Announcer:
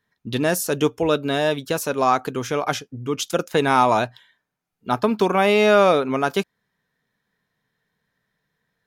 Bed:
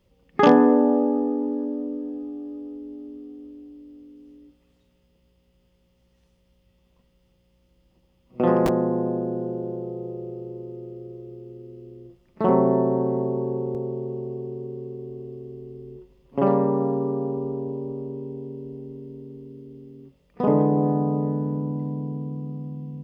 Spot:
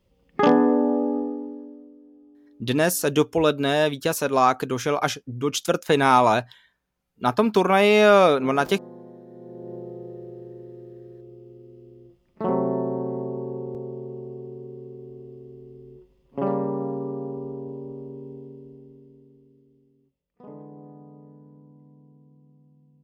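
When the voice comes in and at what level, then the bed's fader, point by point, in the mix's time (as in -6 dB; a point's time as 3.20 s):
2.35 s, 0.0 dB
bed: 1.18 s -2.5 dB
1.95 s -19 dB
9.26 s -19 dB
9.74 s -5 dB
18.34 s -5 dB
20.39 s -23.5 dB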